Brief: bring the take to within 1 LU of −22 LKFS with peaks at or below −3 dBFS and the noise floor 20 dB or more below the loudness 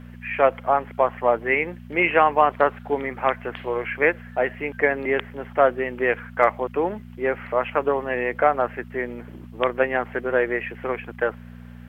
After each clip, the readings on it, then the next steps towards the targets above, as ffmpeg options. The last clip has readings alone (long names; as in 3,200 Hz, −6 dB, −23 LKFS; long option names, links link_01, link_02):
mains hum 60 Hz; hum harmonics up to 240 Hz; level of the hum −39 dBFS; integrated loudness −23.0 LKFS; sample peak −2.5 dBFS; target loudness −22.0 LKFS
→ -af "bandreject=frequency=60:width_type=h:width=4,bandreject=frequency=120:width_type=h:width=4,bandreject=frequency=180:width_type=h:width=4,bandreject=frequency=240:width_type=h:width=4"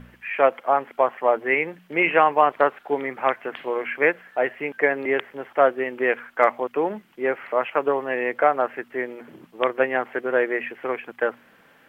mains hum none found; integrated loudness −23.0 LKFS; sample peak −2.5 dBFS; target loudness −22.0 LKFS
→ -af "volume=1dB,alimiter=limit=-3dB:level=0:latency=1"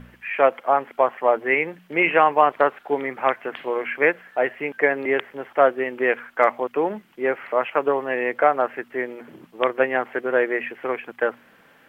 integrated loudness −22.0 LKFS; sample peak −3.0 dBFS; background noise floor −55 dBFS